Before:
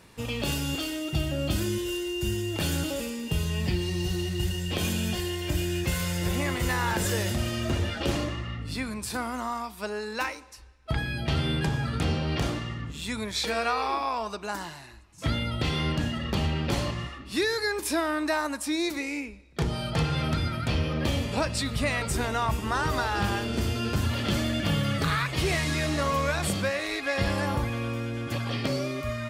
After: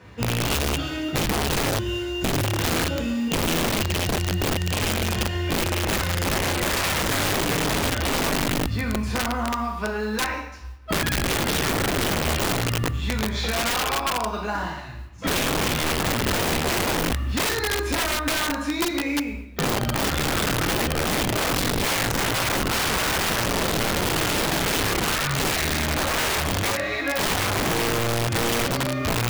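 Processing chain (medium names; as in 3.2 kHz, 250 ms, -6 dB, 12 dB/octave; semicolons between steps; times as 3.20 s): 16.25–18.40 s: bass shelf 63 Hz +9 dB; reverberation RT60 0.60 s, pre-delay 3 ms, DRR -1.5 dB; modulation noise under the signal 18 dB; tone controls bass +1 dB, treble -13 dB; integer overflow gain 14 dB; compression, threshold -21 dBFS, peak gain reduction 5 dB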